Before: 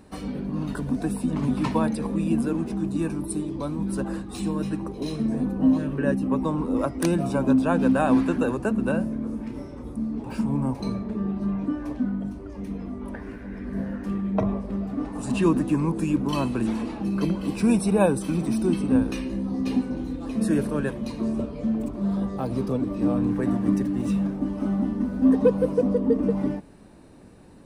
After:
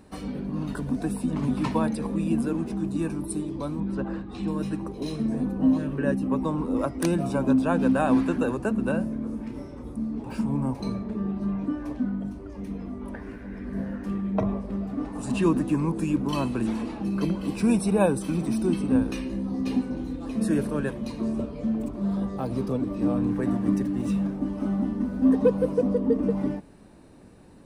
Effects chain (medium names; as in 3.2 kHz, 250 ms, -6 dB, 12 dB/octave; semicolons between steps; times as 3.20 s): 3.80–4.48 s: low-pass 3.2 kHz 12 dB/octave; trim -1.5 dB